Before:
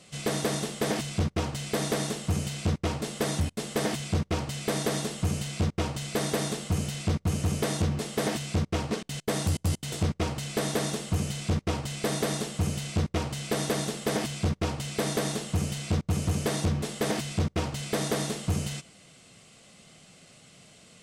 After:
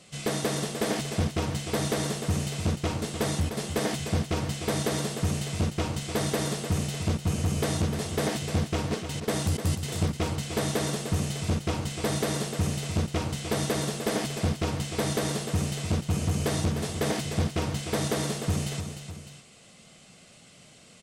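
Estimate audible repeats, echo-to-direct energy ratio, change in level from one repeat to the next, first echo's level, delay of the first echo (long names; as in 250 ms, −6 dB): 2, −7.5 dB, −5.0 dB, −8.5 dB, 302 ms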